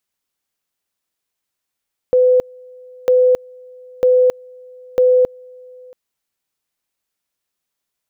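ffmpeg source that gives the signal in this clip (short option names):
-f lavfi -i "aevalsrc='pow(10,(-8.5-28*gte(mod(t,0.95),0.27))/20)*sin(2*PI*504*t)':d=3.8:s=44100"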